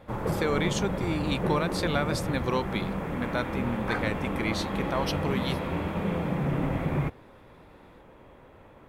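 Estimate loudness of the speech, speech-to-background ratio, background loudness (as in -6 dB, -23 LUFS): -31.5 LUFS, -0.5 dB, -31.0 LUFS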